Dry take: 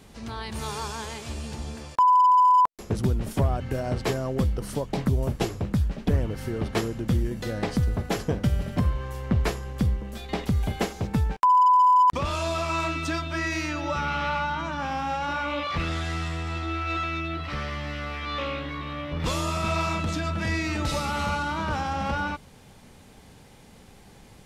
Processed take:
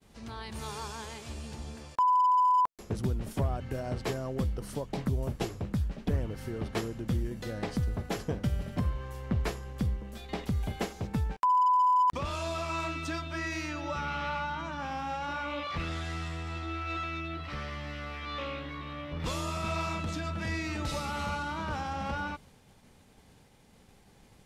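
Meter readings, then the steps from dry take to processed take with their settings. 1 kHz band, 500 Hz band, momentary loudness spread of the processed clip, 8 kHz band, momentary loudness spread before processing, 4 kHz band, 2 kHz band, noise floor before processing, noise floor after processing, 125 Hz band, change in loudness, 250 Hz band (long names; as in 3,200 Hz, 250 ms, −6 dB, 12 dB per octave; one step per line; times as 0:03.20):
−6.5 dB, −6.5 dB, 14 LU, −6.5 dB, 14 LU, −6.5 dB, −6.5 dB, −51 dBFS, −59 dBFS, −6.5 dB, −6.5 dB, −6.5 dB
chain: downward expander −47 dBFS
level −6.5 dB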